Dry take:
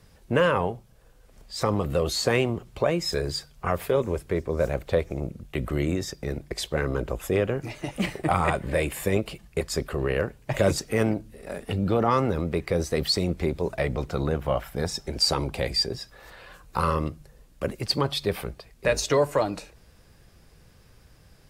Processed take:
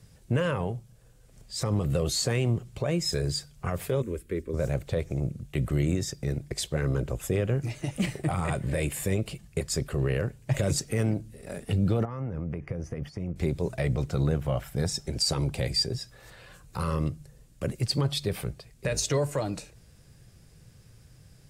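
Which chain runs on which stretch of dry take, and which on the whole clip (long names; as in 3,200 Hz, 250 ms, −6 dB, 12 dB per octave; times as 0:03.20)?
0:04.02–0:04.54: parametric band 5,700 Hz −9.5 dB 1.2 octaves + phaser with its sweep stopped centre 310 Hz, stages 4
0:12.05–0:13.36: parametric band 390 Hz −4.5 dB 0.25 octaves + downward compressor 12 to 1, threshold −28 dBFS + moving average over 11 samples
whole clip: brickwall limiter −15.5 dBFS; octave-band graphic EQ 125/1,000/8,000 Hz +10/−4/+7 dB; level −3.5 dB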